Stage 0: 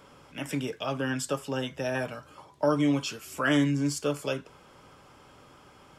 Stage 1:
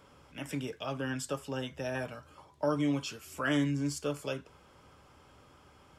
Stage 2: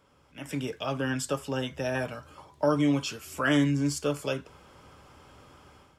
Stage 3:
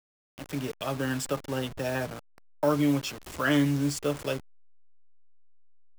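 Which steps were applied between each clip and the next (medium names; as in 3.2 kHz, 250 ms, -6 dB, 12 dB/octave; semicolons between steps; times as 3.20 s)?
peaking EQ 71 Hz +9 dB 0.78 oct; trim -5.5 dB
level rider gain up to 11 dB; trim -5.5 dB
send-on-delta sampling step -35.5 dBFS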